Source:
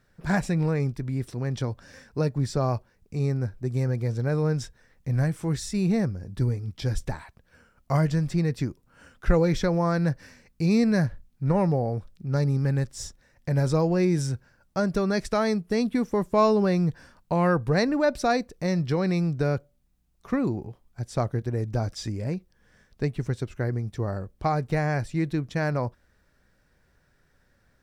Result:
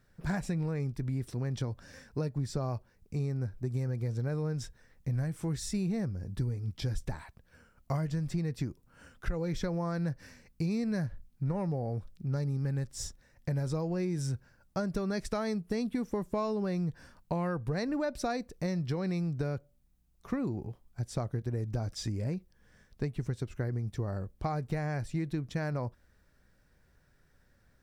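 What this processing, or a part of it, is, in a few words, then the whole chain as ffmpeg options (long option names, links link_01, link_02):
ASMR close-microphone chain: -af "lowshelf=frequency=230:gain=4,acompressor=threshold=-25dB:ratio=6,highshelf=frequency=8500:gain=4.5,volume=-4dB"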